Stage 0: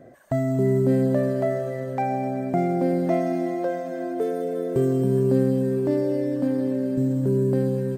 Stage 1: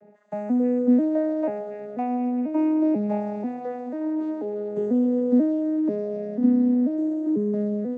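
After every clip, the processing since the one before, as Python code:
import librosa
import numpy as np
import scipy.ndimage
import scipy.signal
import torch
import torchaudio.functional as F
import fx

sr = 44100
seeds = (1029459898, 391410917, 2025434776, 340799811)

y = fx.vocoder_arp(x, sr, chord='minor triad', root=56, every_ms=490)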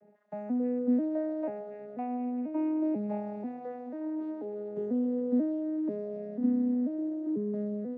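y = fx.air_absorb(x, sr, metres=130.0)
y = y * 10.0 ** (-8.0 / 20.0)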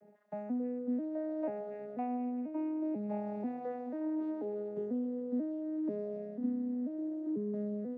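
y = fx.rider(x, sr, range_db=5, speed_s=0.5)
y = y * 10.0 ** (-4.5 / 20.0)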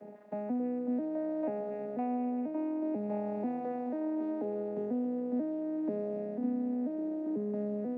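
y = fx.bin_compress(x, sr, power=0.6)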